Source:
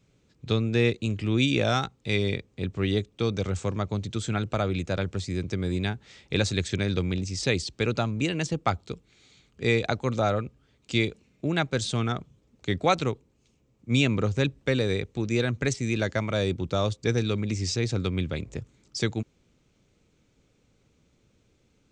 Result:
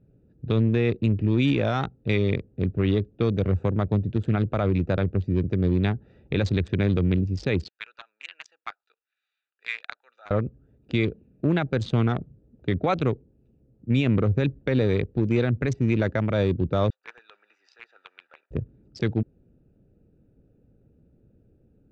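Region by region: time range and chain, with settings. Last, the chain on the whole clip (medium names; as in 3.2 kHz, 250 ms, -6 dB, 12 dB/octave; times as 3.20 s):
7.68–10.31 s: high-pass 1.4 kHz 24 dB/octave + peaking EQ 1.9 kHz -4 dB 2.7 oct
16.90–18.51 s: block-companded coder 5-bit + high-pass 1.2 kHz 24 dB/octave + treble shelf 2.9 kHz -9.5 dB
whole clip: local Wiener filter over 41 samples; Bessel low-pass 2.2 kHz, order 2; peak limiter -20 dBFS; trim +7 dB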